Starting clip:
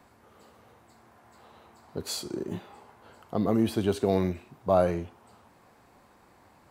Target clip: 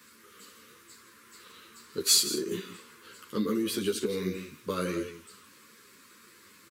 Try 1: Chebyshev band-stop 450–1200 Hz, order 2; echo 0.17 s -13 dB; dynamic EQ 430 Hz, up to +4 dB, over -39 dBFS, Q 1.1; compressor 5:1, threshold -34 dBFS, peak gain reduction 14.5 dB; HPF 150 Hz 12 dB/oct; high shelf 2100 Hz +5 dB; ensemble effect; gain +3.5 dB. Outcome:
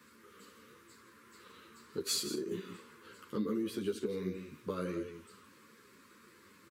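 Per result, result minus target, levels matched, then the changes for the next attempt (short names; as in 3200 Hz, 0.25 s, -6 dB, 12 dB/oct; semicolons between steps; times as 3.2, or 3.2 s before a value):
compressor: peak gain reduction +5 dB; 4000 Hz band -3.0 dB
change: compressor 5:1, threshold -27.5 dBFS, peak gain reduction 9.5 dB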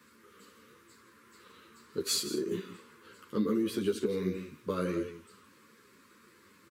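4000 Hz band -4.5 dB
change: high shelf 2100 Hz +15.5 dB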